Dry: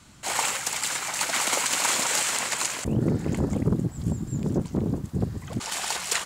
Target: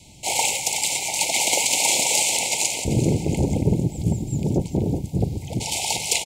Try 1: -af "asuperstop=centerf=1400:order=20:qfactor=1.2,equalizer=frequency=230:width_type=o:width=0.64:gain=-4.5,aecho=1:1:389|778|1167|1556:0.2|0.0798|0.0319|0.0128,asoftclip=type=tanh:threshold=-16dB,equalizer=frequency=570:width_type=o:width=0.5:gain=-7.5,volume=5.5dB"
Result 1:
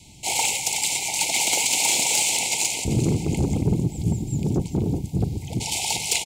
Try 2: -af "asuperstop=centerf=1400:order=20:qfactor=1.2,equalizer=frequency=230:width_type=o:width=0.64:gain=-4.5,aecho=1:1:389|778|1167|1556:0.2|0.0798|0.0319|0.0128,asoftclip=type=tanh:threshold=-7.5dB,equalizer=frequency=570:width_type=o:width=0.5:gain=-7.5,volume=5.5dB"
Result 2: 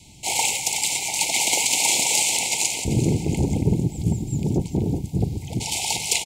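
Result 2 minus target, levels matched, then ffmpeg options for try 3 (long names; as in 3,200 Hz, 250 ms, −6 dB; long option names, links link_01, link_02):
500 Hz band −2.5 dB
-af "asuperstop=centerf=1400:order=20:qfactor=1.2,equalizer=frequency=230:width_type=o:width=0.64:gain=-4.5,aecho=1:1:389|778|1167|1556:0.2|0.0798|0.0319|0.0128,asoftclip=type=tanh:threshold=-7.5dB,volume=5.5dB"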